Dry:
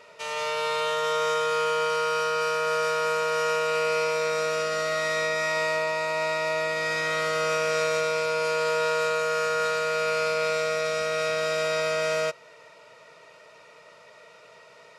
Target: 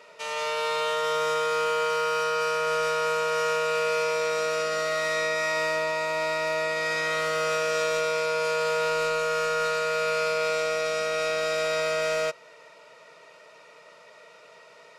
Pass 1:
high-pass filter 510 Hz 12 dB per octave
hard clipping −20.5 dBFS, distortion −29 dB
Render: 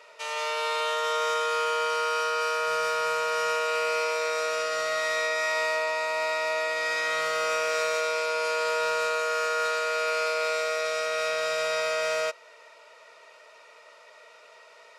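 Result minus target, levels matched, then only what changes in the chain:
125 Hz band −15.0 dB
change: high-pass filter 160 Hz 12 dB per octave

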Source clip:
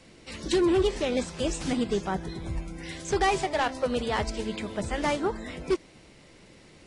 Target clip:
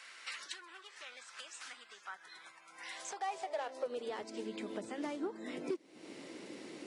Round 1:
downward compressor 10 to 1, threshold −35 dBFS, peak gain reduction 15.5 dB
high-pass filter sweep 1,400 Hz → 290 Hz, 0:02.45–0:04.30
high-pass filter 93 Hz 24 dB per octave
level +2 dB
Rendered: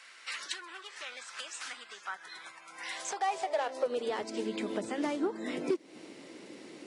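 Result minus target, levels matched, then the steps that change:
downward compressor: peak gain reduction −7 dB
change: downward compressor 10 to 1, threshold −43 dBFS, peak gain reduction 22.5 dB

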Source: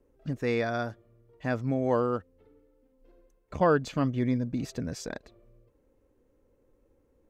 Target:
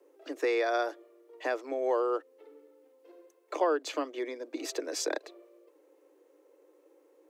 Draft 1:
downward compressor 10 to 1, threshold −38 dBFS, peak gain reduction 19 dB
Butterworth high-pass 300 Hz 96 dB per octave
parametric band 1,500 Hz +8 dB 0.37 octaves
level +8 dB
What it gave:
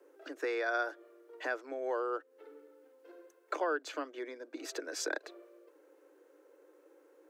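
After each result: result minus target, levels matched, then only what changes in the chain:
downward compressor: peak gain reduction +7 dB; 2,000 Hz band +6.0 dB
change: downward compressor 10 to 1, threshold −30.5 dBFS, peak gain reduction 12.5 dB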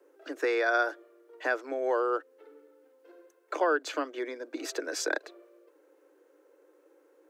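2,000 Hz band +6.0 dB
change: parametric band 1,500 Hz −3 dB 0.37 octaves

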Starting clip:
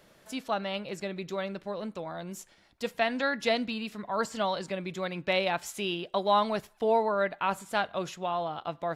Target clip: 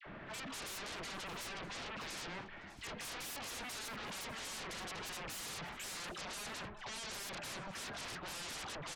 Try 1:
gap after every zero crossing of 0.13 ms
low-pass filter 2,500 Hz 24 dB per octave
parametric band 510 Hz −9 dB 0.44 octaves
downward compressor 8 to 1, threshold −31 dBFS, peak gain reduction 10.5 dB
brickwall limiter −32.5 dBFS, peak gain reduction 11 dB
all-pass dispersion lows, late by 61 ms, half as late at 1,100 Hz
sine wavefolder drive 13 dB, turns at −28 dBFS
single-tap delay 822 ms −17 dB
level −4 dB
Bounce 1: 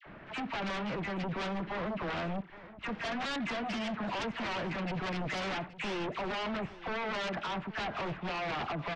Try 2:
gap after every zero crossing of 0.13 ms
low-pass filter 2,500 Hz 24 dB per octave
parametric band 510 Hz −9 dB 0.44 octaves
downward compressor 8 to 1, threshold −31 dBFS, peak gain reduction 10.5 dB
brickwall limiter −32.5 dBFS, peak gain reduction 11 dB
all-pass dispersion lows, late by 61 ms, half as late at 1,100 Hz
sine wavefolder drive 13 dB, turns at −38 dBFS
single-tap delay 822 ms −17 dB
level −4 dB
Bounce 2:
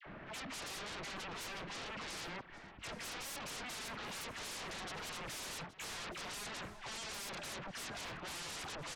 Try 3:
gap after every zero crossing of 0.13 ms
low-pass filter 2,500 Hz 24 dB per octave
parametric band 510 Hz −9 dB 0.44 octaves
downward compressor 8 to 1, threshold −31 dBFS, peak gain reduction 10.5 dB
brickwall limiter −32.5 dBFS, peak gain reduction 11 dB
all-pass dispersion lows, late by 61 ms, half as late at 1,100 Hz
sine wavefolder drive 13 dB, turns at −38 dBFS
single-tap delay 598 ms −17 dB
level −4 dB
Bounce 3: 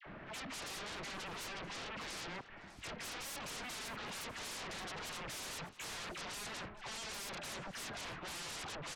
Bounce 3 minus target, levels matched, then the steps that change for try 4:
gap after every zero crossing: distortion +11 dB
change: gap after every zero crossing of 0.043 ms

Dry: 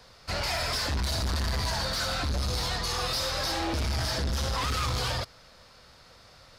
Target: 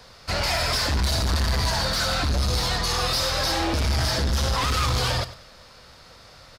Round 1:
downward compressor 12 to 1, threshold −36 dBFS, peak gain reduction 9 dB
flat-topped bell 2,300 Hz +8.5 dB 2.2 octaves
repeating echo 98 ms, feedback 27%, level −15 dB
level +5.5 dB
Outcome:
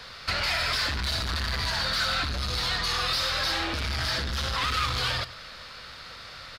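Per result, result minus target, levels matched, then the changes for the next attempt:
downward compressor: peak gain reduction +9 dB; 2,000 Hz band +3.5 dB
remove: downward compressor 12 to 1, threshold −36 dBFS, peak gain reduction 9 dB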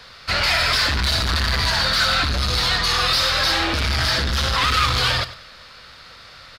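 2,000 Hz band +3.5 dB
remove: flat-topped bell 2,300 Hz +8.5 dB 2.2 octaves

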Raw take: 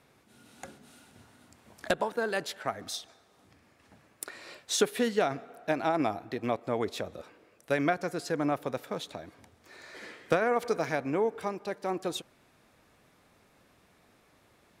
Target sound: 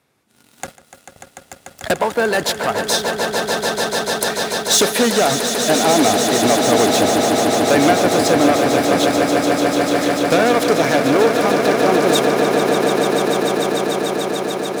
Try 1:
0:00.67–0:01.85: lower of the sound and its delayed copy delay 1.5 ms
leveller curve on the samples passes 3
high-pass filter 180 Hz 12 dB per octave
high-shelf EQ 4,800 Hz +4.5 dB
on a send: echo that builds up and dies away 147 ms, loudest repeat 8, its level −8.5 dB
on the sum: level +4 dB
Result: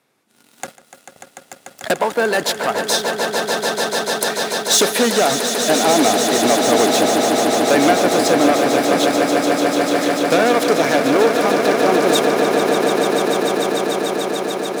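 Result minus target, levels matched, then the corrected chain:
125 Hz band −4.5 dB
0:00.67–0:01.85: lower of the sound and its delayed copy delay 1.5 ms
leveller curve on the samples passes 3
high-pass filter 57 Hz 12 dB per octave
high-shelf EQ 4,800 Hz +4.5 dB
on a send: echo that builds up and dies away 147 ms, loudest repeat 8, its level −8.5 dB
on the sum: level +4 dB

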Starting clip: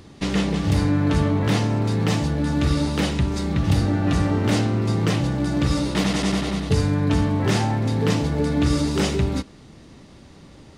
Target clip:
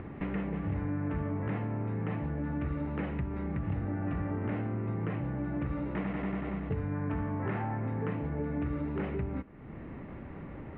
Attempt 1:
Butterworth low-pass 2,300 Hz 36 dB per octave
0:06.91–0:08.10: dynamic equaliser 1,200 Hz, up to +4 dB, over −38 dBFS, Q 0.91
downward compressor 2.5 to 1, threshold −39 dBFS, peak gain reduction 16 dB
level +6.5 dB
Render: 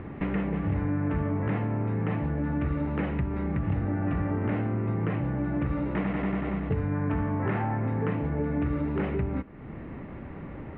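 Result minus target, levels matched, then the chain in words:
downward compressor: peak gain reduction −5.5 dB
Butterworth low-pass 2,300 Hz 36 dB per octave
0:06.91–0:08.10: dynamic equaliser 1,200 Hz, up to +4 dB, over −38 dBFS, Q 0.91
downward compressor 2.5 to 1, threshold −48 dBFS, peak gain reduction 21.5 dB
level +6.5 dB

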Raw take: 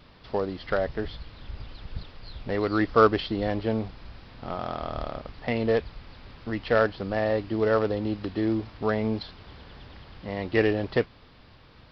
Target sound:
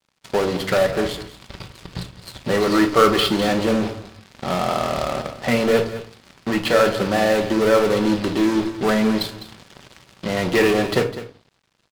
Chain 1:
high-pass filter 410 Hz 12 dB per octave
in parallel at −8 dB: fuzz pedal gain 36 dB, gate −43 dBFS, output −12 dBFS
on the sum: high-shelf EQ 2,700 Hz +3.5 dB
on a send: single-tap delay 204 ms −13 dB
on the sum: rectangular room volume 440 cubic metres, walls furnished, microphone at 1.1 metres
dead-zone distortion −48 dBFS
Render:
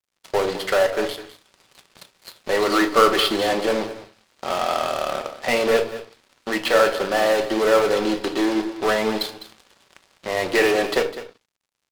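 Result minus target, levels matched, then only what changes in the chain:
125 Hz band −11.0 dB
change: high-pass filter 110 Hz 12 dB per octave

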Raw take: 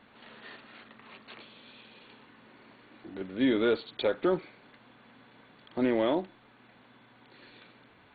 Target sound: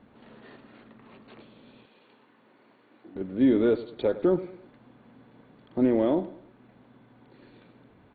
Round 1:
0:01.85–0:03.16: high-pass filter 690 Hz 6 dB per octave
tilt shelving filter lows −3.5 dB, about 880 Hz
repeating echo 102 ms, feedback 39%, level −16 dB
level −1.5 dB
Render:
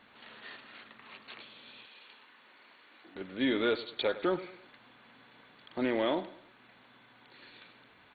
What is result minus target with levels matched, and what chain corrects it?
1,000 Hz band +8.0 dB
0:01.85–0:03.16: high-pass filter 690 Hz 6 dB per octave
tilt shelving filter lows +8.5 dB, about 880 Hz
repeating echo 102 ms, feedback 39%, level −16 dB
level −1.5 dB

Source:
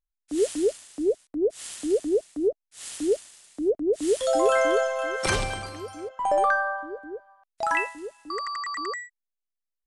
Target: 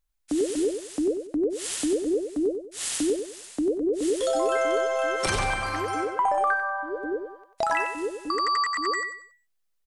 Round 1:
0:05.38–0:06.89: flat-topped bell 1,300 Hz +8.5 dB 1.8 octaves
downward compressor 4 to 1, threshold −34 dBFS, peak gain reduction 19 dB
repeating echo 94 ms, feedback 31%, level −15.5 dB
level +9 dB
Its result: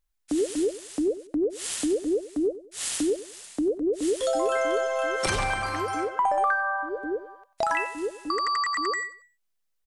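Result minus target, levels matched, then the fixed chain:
echo-to-direct −8 dB
0:05.38–0:06.89: flat-topped bell 1,300 Hz +8.5 dB 1.8 octaves
downward compressor 4 to 1, threshold −34 dBFS, peak gain reduction 19 dB
repeating echo 94 ms, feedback 31%, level −7.5 dB
level +9 dB

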